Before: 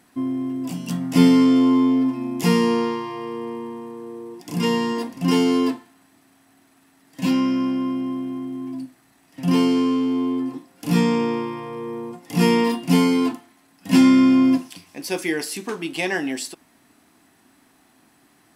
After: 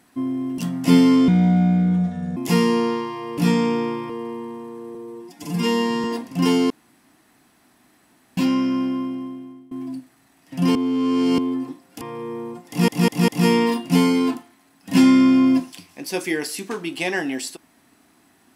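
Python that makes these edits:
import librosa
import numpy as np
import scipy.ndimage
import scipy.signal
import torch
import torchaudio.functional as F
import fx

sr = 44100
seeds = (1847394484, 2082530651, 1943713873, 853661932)

y = fx.edit(x, sr, fx.cut(start_s=0.58, length_s=0.28),
    fx.speed_span(start_s=1.56, length_s=0.75, speed=0.69),
    fx.stretch_span(start_s=4.17, length_s=0.73, factor=1.5),
    fx.room_tone_fill(start_s=5.56, length_s=1.67),
    fx.fade_out_to(start_s=7.73, length_s=0.84, floor_db=-22.0),
    fx.reverse_span(start_s=9.61, length_s=0.63),
    fx.move(start_s=10.87, length_s=0.72, to_s=3.32),
    fx.stutter(start_s=12.26, slice_s=0.2, count=4), tone=tone)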